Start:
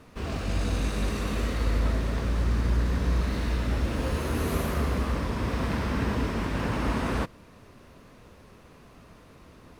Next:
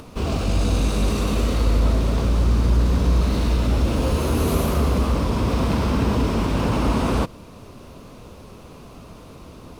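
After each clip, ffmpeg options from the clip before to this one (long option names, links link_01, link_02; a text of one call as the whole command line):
ffmpeg -i in.wav -filter_complex "[0:a]equalizer=frequency=1800:width_type=o:width=0.58:gain=-10.5,asplit=2[link_01][link_02];[link_02]alimiter=level_in=2dB:limit=-24dB:level=0:latency=1,volume=-2dB,volume=-1dB[link_03];[link_01][link_03]amix=inputs=2:normalize=0,acompressor=mode=upward:threshold=-43dB:ratio=2.5,volume=4.5dB" out.wav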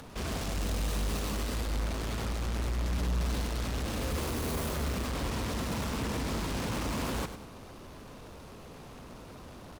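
ffmpeg -i in.wav -af "asoftclip=type=tanh:threshold=-23.5dB,aeval=exprs='0.0668*(cos(1*acos(clip(val(0)/0.0668,-1,1)))-cos(1*PI/2))+0.0266*(cos(7*acos(clip(val(0)/0.0668,-1,1)))-cos(7*PI/2))':channel_layout=same,aecho=1:1:99|198|297|396:0.299|0.113|0.0431|0.0164,volume=-7dB" out.wav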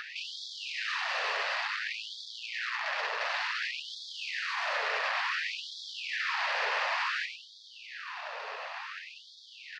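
ffmpeg -i in.wav -filter_complex "[0:a]asplit=2[link_01][link_02];[link_02]highpass=frequency=720:poles=1,volume=20dB,asoftclip=type=tanh:threshold=-24dB[link_03];[link_01][link_03]amix=inputs=2:normalize=0,lowpass=frequency=1700:poles=1,volume=-6dB,highpass=140,equalizer=frequency=480:width_type=q:width=4:gain=-6,equalizer=frequency=1800:width_type=q:width=4:gain=9,equalizer=frequency=2600:width_type=q:width=4:gain=6,equalizer=frequency=4600:width_type=q:width=4:gain=5,lowpass=frequency=5500:width=0.5412,lowpass=frequency=5500:width=1.3066,afftfilt=real='re*gte(b*sr/1024,410*pow(3300/410,0.5+0.5*sin(2*PI*0.56*pts/sr)))':imag='im*gte(b*sr/1024,410*pow(3300/410,0.5+0.5*sin(2*PI*0.56*pts/sr)))':win_size=1024:overlap=0.75,volume=2dB" out.wav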